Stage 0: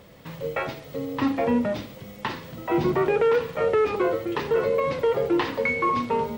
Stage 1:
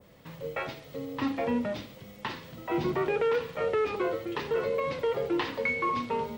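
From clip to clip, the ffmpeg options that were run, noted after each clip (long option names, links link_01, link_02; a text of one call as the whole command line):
ffmpeg -i in.wav -af "adynamicequalizer=threshold=0.01:dfrequency=3500:dqfactor=0.7:tfrequency=3500:tqfactor=0.7:attack=5:release=100:ratio=0.375:range=2:mode=boostabove:tftype=bell,volume=-6.5dB" out.wav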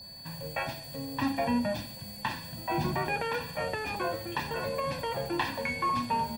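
ffmpeg -i in.wav -af "highshelf=frequency=7300:width_type=q:width=1.5:gain=12.5,aeval=exprs='val(0)+0.00562*sin(2*PI*4500*n/s)':channel_layout=same,aecho=1:1:1.2:0.78" out.wav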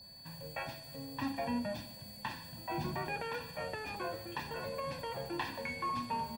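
ffmpeg -i in.wav -af "aecho=1:1:152|304|456|608:0.0944|0.0491|0.0255|0.0133,volume=-7.5dB" out.wav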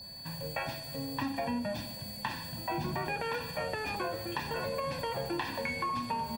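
ffmpeg -i in.wav -af "acompressor=threshold=-38dB:ratio=6,volume=7.5dB" out.wav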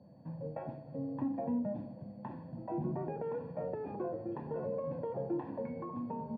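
ffmpeg -i in.wav -af "asuperpass=centerf=280:order=4:qfactor=0.62,volume=1dB" out.wav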